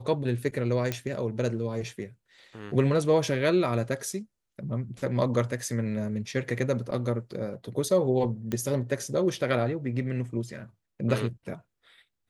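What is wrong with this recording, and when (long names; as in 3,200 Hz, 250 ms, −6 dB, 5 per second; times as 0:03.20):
0:00.92: click −14 dBFS
0:08.52: click −18 dBFS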